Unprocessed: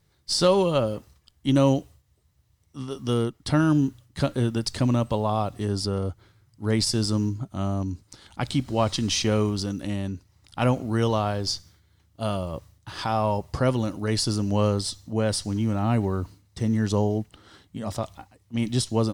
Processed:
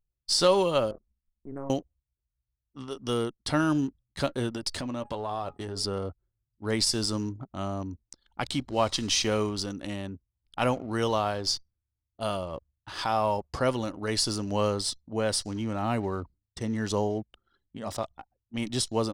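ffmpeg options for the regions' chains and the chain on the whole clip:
ffmpeg -i in.wav -filter_complex "[0:a]asettb=1/sr,asplit=3[link_01][link_02][link_03];[link_01]atrim=end=0.914[link_04];[link_02]atrim=start=0.91:end=1.7,asetpts=PTS-STARTPTS,afade=type=in:duration=0.004:curve=qsin,afade=type=out:start_time=0.786:duration=0.004:curve=qsin,tremolo=f=140:d=0.974,acompressor=threshold=-38dB:ratio=2:attack=3.2:release=140:knee=1:detection=peak,asuperstop=centerf=4000:order=8:qfactor=0.61[link_05];[link_03]atrim=start=1.696[link_06];[link_04][link_05]acrossfade=duration=0.004:curve1=hsin:curve2=qsin[link_07];[link_07][link_06]acrossfade=duration=0.004:curve1=qsin:curve2=hsin,asettb=1/sr,asplit=3[link_08][link_09][link_10];[link_08]atrim=end=4.514[link_11];[link_09]atrim=start=4.51:end=5.83,asetpts=PTS-STARTPTS,afade=type=in:duration=0.004:curve=qsin,afade=type=out:start_time=1.316:duration=0.004:curve=qsin,bandreject=frequency=415.7:width_type=h:width=4,bandreject=frequency=831.4:width_type=h:width=4,bandreject=frequency=1247.1:width_type=h:width=4,bandreject=frequency=1662.8:width_type=h:width=4,bandreject=frequency=2078.5:width_type=h:width=4,bandreject=frequency=2494.2:width_type=h:width=4,acompressor=threshold=-24dB:ratio=10:attack=3.2:release=140:knee=1:detection=peak,asplit=2[link_12][link_13];[link_13]adelay=12,volume=-10dB[link_14];[link_12][link_14]amix=inputs=2:normalize=0,atrim=end_sample=58212[link_15];[link_10]atrim=start=5.826[link_16];[link_11][link_15]acrossfade=duration=0.004:curve1=hsin:curve2=qsin[link_17];[link_17][link_16]acrossfade=duration=0.004:curve1=qsin:curve2=hsin,equalizer=frequency=120:width=0.52:gain=-9.5,anlmdn=0.1" out.wav

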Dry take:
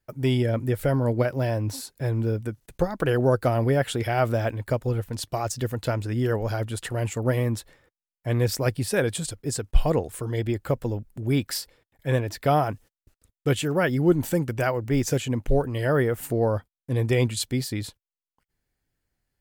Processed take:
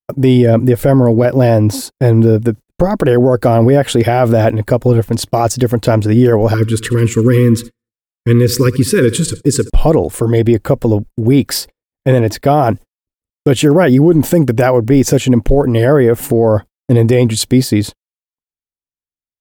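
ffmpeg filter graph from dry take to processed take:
ffmpeg -i in.wav -filter_complex "[0:a]asettb=1/sr,asplit=3[link_01][link_02][link_03];[link_01]atrim=end=6.544[link_04];[link_02]atrim=start=6.54:end=9.7,asetpts=PTS-STARTPTS,afade=type=in:duration=0.004:curve=qsin,afade=type=out:start_time=3.156:duration=0.004:curve=qsin,asuperstop=centerf=710:order=8:qfactor=1.3,aecho=1:1:72|144|216|288|360:0.1|0.057|0.0325|0.0185|0.0106,atrim=end_sample=139356[link_05];[link_03]atrim=start=9.696[link_06];[link_04][link_05]acrossfade=duration=0.004:curve1=hsin:curve2=qsin[link_07];[link_07][link_06]acrossfade=duration=0.004:curve1=qsin:curve2=hsin,agate=range=-42dB:threshold=-39dB:ratio=16:detection=peak,firequalizer=gain_entry='entry(110,0);entry(250,5);entry(1400,-3)':delay=0.05:min_phase=1,alimiter=level_in=16dB:limit=-1dB:release=50:level=0:latency=1,volume=-1dB" out.wav

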